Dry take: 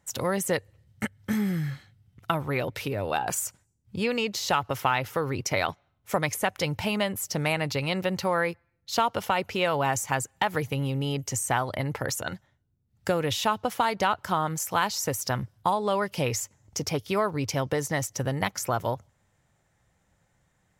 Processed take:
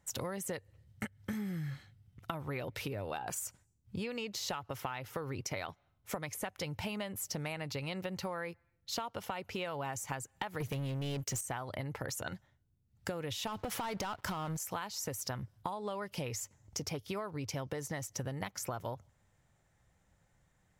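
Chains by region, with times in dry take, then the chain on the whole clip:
10.60–11.41 s: high-pass 80 Hz 6 dB/octave + peaking EQ 910 Hz -13.5 dB 0.44 oct + waveshaping leveller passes 3
13.47–14.57 s: compression 5:1, threshold -31 dBFS + waveshaping leveller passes 3
whole clip: bass shelf 62 Hz +7 dB; compression 10:1, threshold -31 dBFS; trim -4 dB

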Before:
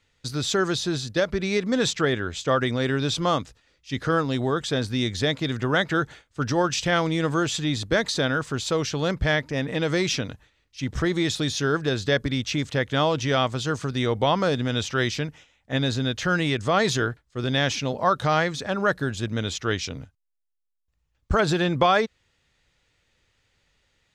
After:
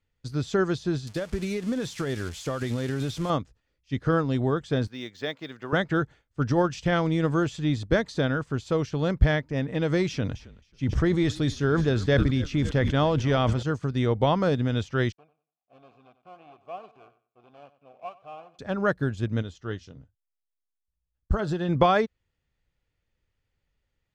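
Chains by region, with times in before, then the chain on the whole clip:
1.07–3.30 s: zero-crossing glitches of -17 dBFS + low-pass 7.8 kHz + compression 5:1, threshold -22 dBFS
4.87–5.73 s: block-companded coder 7-bit + frequency weighting A + decimation joined by straight lines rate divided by 2×
10.08–13.63 s: frequency-shifting echo 270 ms, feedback 61%, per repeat -45 Hz, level -20 dB + decay stretcher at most 55 dB/s
15.12–18.59 s: dead-time distortion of 0.29 ms + vowel filter a + feedback delay 93 ms, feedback 24%, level -14 dB
19.42–21.69 s: band-stop 2.3 kHz, Q 5.1 + flange 1.2 Hz, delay 4 ms, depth 2.1 ms, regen -78%
whole clip: tilt EQ -2 dB/octave; band-stop 3.8 kHz, Q 21; upward expansion 1.5:1, over -40 dBFS

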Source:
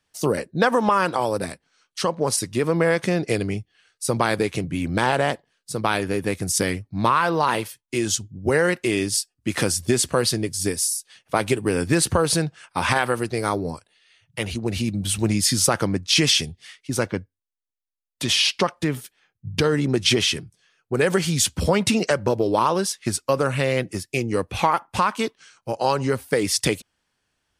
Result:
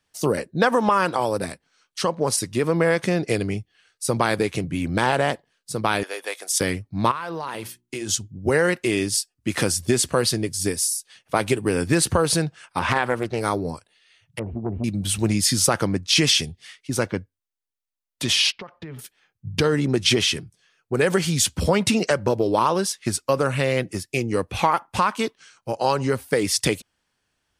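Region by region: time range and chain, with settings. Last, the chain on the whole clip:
6.03–6.61 s: high-pass 540 Hz 24 dB/octave + peaking EQ 3.4 kHz +8 dB 0.2 oct
7.11–8.09 s: hum notches 60/120/180/240/300/360 Hz + compression, threshold -26 dBFS
12.79–13.41 s: low-pass 3 kHz 6 dB/octave + loudspeaker Doppler distortion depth 0.34 ms
14.39–14.84 s: low-pass 1 kHz 24 dB/octave + transformer saturation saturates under 370 Hz
18.52–18.99 s: band-stop 290 Hz, Q 6.7 + compression 10:1, threshold -31 dBFS + distance through air 270 m
whole clip: none

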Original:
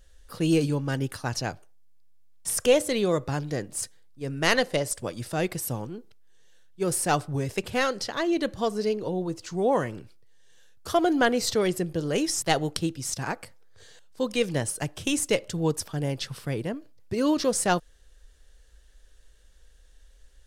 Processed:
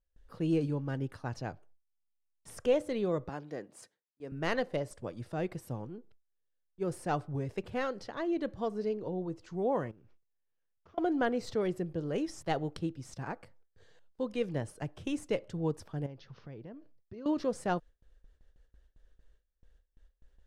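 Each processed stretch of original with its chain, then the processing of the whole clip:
3.29–4.32 s: high-pass 180 Hz + bass shelf 230 Hz -7.5 dB
9.91–10.98 s: CVSD coder 32 kbps + compression 12:1, threshold -48 dBFS + peaking EQ 4.2 kHz -8.5 dB 0.61 oct
16.06–17.26 s: steep low-pass 6.5 kHz 96 dB/octave + compression 3:1, threshold -39 dBFS
whole clip: low-pass 1.2 kHz 6 dB/octave; gate with hold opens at -46 dBFS; trim -6.5 dB

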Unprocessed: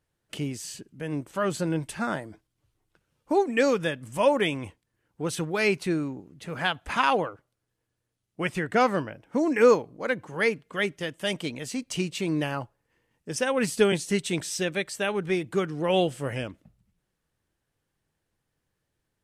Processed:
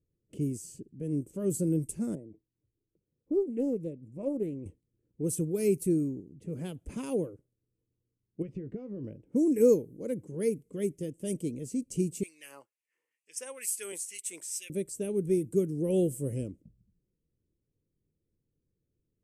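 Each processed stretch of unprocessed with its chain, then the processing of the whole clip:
2.15–4.66 s: boxcar filter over 28 samples + tilt EQ +2.5 dB/octave + loudspeaker Doppler distortion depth 0.21 ms
8.42–9.04 s: doubling 15 ms -12 dB + compression 12:1, threshold -31 dBFS + distance through air 250 m
12.23–14.70 s: peaking EQ 2 kHz +5 dB 0.93 oct + LFO high-pass sine 2.2 Hz 970–2700 Hz + tape noise reduction on one side only encoder only
whole clip: high-order bell 1.1 kHz -13 dB; level-controlled noise filter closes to 2.7 kHz, open at -24 dBFS; FFT filter 390 Hz 0 dB, 830 Hz -12 dB, 3.8 kHz -24 dB, 7.9 kHz +3 dB, 13 kHz +13 dB

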